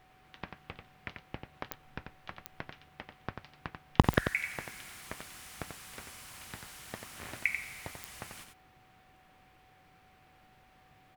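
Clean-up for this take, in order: de-click; band-stop 750 Hz, Q 30; interpolate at 4.02 s, 16 ms; inverse comb 90 ms -6.5 dB

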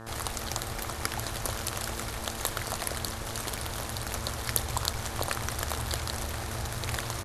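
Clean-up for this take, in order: de-hum 113.1 Hz, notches 16; interpolate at 3.57/4.93 s, 4.2 ms; inverse comb 1029 ms -13 dB

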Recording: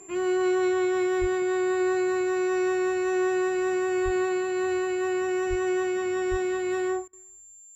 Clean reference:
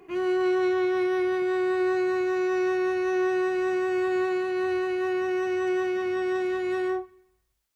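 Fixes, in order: band-stop 7.3 kHz, Q 30; de-plosive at 1.20/4.04/5.49/6.30 s; interpolate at 7.08 s, 49 ms

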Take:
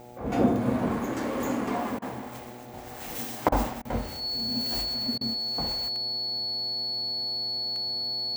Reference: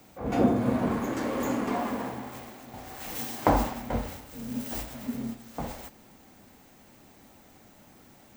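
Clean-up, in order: de-click; de-hum 121.5 Hz, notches 7; band-stop 4.4 kHz, Q 30; interpolate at 1.99/3.49/3.82/5.18 s, 29 ms

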